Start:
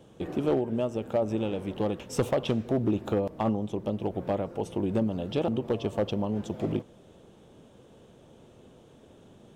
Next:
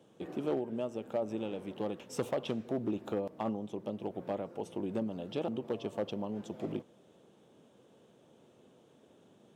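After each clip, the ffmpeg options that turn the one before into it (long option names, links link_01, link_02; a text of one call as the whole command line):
ffmpeg -i in.wav -af "highpass=160,volume=-7dB" out.wav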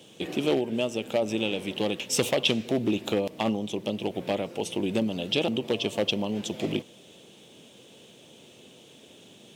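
ffmpeg -i in.wav -af "highshelf=frequency=1900:width_type=q:width=1.5:gain=10.5,volume=8.5dB" out.wav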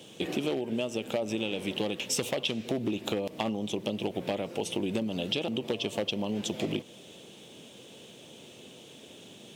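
ffmpeg -i in.wav -af "acompressor=threshold=-29dB:ratio=6,volume=2dB" out.wav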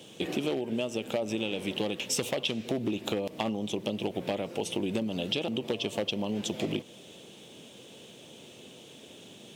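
ffmpeg -i in.wav -af anull out.wav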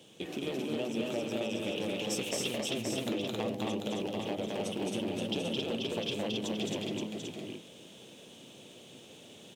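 ffmpeg -i in.wav -filter_complex "[0:a]asplit=2[link_01][link_02];[link_02]aecho=0:1:525:0.596[link_03];[link_01][link_03]amix=inputs=2:normalize=0,aeval=exprs='clip(val(0),-1,0.1)':channel_layout=same,asplit=2[link_04][link_05];[link_05]aecho=0:1:215.7|268.2:0.794|0.794[link_06];[link_04][link_06]amix=inputs=2:normalize=0,volume=-7dB" out.wav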